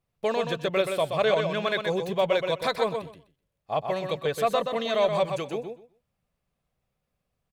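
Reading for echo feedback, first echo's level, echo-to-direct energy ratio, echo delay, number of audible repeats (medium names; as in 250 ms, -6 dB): 17%, -6.0 dB, -6.0 dB, 126 ms, 2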